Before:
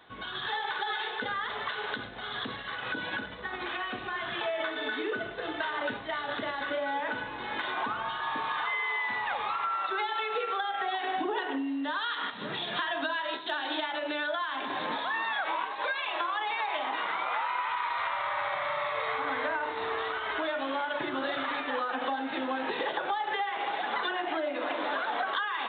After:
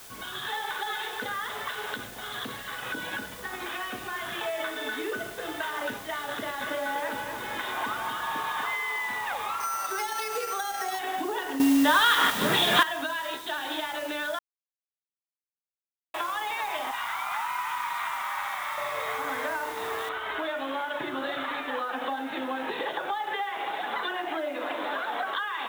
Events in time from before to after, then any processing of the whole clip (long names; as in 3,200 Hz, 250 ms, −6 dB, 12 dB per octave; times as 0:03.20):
0:00.76–0:02.74: highs frequency-modulated by the lows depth 0.16 ms
0:06.35–0:08.76: feedback echo at a low word length 243 ms, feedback 35%, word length 10 bits, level −5.5 dB
0:09.60–0:10.99: bad sample-rate conversion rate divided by 6×, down filtered, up hold
0:11.60–0:12.83: clip gain +11.5 dB
0:14.39–0:16.14: silence
0:16.91–0:18.78: Butterworth high-pass 720 Hz 48 dB per octave
0:20.09: noise floor change −47 dB −60 dB